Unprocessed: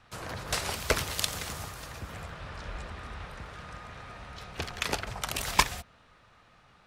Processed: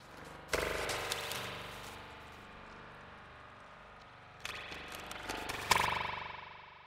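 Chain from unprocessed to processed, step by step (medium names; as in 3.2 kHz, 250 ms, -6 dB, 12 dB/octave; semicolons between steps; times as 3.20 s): slices played last to first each 122 ms, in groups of 4; bass shelf 130 Hz -11 dB; thinning echo 117 ms, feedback 40%, level -14.5 dB; spring tank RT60 3.2 s, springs 41 ms, chirp 40 ms, DRR -5.5 dB; upward expansion 1.5:1, over -36 dBFS; trim -6 dB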